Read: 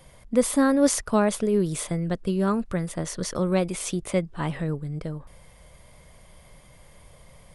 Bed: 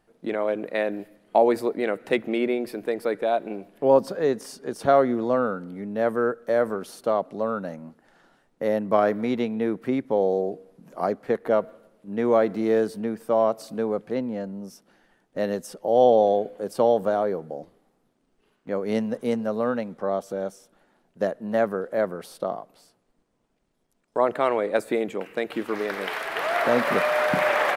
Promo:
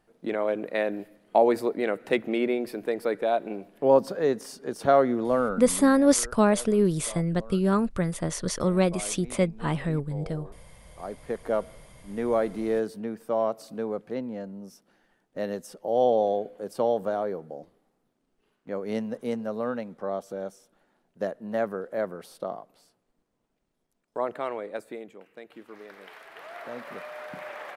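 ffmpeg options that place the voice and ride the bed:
-filter_complex "[0:a]adelay=5250,volume=0.5dB[a];[1:a]volume=13dB,afade=t=out:st=5.73:d=0.23:silence=0.125893,afade=t=in:st=10.87:d=0.66:silence=0.188365,afade=t=out:st=23.77:d=1.4:silence=0.237137[b];[a][b]amix=inputs=2:normalize=0"

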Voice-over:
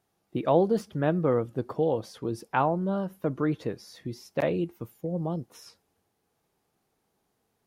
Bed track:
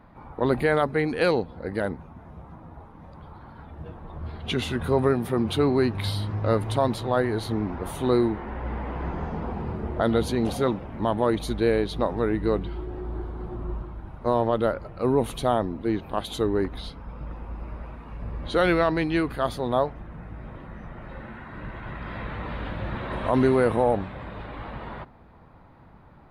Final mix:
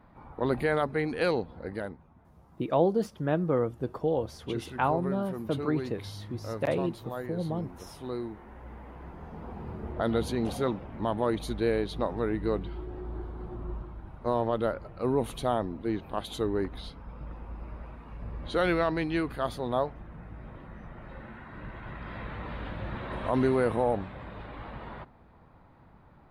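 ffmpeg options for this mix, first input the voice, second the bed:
-filter_complex "[0:a]adelay=2250,volume=-2dB[a];[1:a]volume=4dB,afade=t=out:st=1.64:d=0.35:silence=0.354813,afade=t=in:st=9.18:d=0.96:silence=0.354813[b];[a][b]amix=inputs=2:normalize=0"

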